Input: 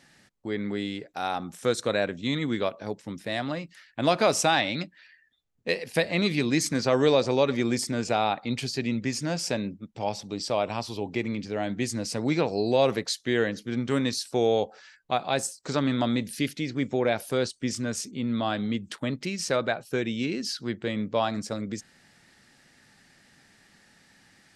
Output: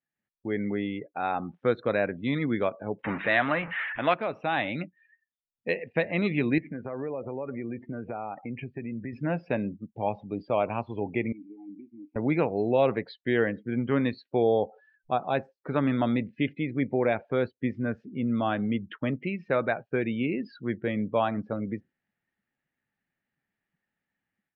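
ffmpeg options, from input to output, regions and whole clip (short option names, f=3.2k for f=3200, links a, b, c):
-filter_complex "[0:a]asettb=1/sr,asplit=3[a][b][c];[a]atrim=end=3.044[d];[b]atrim=start=3.04:end=4.14,asetpts=PTS-STARTPTS,afade=t=in:d=0.004:c=qsin,afade=t=out:st=1.096:d=0.004:c=qsin,aeval=exprs='val(0)+0.5*0.0178*sgn(val(0))':c=same,equalizer=f=1.7k:w=0.43:g=13.5[e];[c]atrim=start=4.136[f];[d][e]acrossfade=d=0.004:c1=hsin:c2=qsin[g];[g][f]acrossfade=d=0.004:c1=qsin:c2=hsin,asettb=1/sr,asplit=3[h][i][j];[h]atrim=end=6.584[k];[i]atrim=start=6.58:end=9.13,asetpts=PTS-STARTPTS,afade=t=in:d=0.004:c=qsin,afade=t=out:st=2.546:d=0.004:c=qsin,lowpass=f=2.5k:w=0.5412,lowpass=f=2.5k:w=1.3066,acompressor=threshold=-33dB:ratio=4:attack=3.2:release=140:knee=1:detection=peak[l];[j]atrim=start=9.126[m];[k][l]acrossfade=d=0.004:c1=hsin:c2=qsin[n];[n][m]acrossfade=d=0.004:c1=qsin:c2=hsin,asettb=1/sr,asplit=3[o][p][q];[o]atrim=end=11.324[r];[p]atrim=start=11.32:end=12.16,asetpts=PTS-STARTPTS,afade=t=in:d=0.004:c=qsin,afade=t=out:st=0.836:d=0.004:c=qsin,acompressor=threshold=-30dB:ratio=16:attack=3.2:release=140:knee=1:detection=peak,asplit=3[s][t][u];[s]bandpass=f=300:t=q:w=8,volume=0dB[v];[t]bandpass=f=870:t=q:w=8,volume=-6dB[w];[u]bandpass=f=2.24k:t=q:w=8,volume=-9dB[x];[v][w][x]amix=inputs=3:normalize=0[y];[q]atrim=start=12.156[z];[r][y]acrossfade=d=0.004:c1=hsin:c2=qsin[aa];[aa][z]acrossfade=d=0.004:c1=qsin:c2=hsin,asettb=1/sr,asplit=3[ab][ac][ad];[ab]atrim=end=14.424[ae];[ac]atrim=start=14.42:end=15.35,asetpts=PTS-STARTPTS,afade=t=in:d=0.004:c=qsin,afade=t=out:st=0.926:d=0.004:c=qsin,equalizer=f=2.1k:w=2.2:g=-10.5,acompressor=mode=upward:threshold=-44dB:ratio=2.5:attack=3.2:release=140:knee=2.83:detection=peak[af];[ad]atrim=start=15.346[ag];[ae][af]acrossfade=d=0.004:c1=hsin:c2=qsin[ah];[ah][ag]acrossfade=d=0.004:c1=qsin:c2=hsin,lowpass=f=2.9k:w=0.5412,lowpass=f=2.9k:w=1.3066,afftdn=nr=27:nf=-42,dynaudnorm=f=160:g=3:m=10dB,volume=-9dB"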